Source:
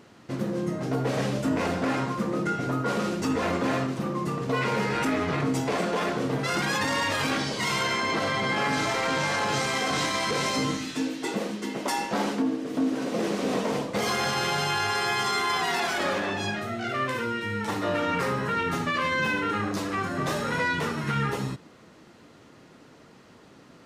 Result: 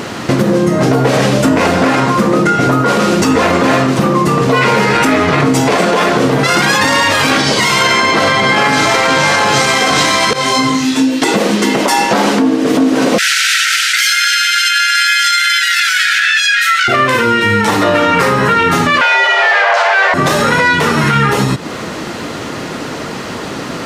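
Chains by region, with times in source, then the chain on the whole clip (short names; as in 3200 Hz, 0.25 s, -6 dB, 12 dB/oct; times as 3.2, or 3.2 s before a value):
10.33–11.22 resonator 130 Hz, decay 0.19 s, mix 90% + detuned doubles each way 24 cents
13.18–16.88 brick-wall FIR high-pass 1300 Hz + fast leveller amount 50%
19.01–20.14 overdrive pedal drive 26 dB, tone 1700 Hz, clips at -16.5 dBFS + frequency shift +390 Hz + air absorption 90 m
whole clip: low shelf 400 Hz -4 dB; compressor, threshold -40 dBFS; maximiser +32.5 dB; gain -1 dB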